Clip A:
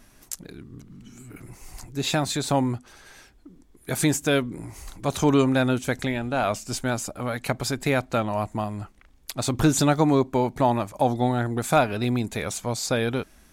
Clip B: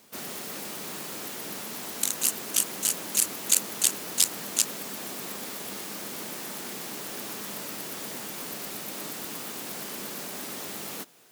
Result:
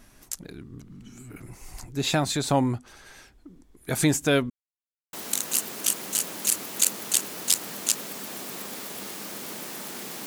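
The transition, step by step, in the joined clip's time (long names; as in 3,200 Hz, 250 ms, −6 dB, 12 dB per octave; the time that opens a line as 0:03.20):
clip A
0:04.50–0:05.13: silence
0:05.13: continue with clip B from 0:01.83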